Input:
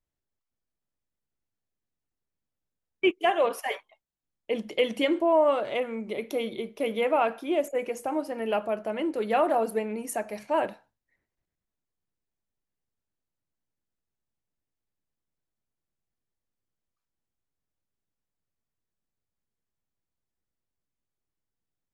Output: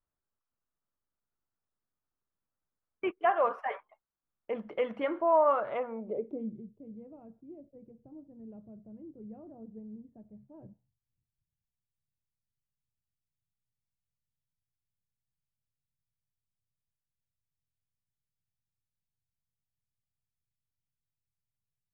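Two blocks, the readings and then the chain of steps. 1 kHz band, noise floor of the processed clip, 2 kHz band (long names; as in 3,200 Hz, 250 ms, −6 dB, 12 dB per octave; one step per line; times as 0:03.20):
−4.0 dB, below −85 dBFS, −9.0 dB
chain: low-pass filter sweep 1,300 Hz → 130 Hz, 0:05.76–0:06.71
dynamic equaliser 320 Hz, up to −7 dB, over −39 dBFS, Q 1.4
level −4 dB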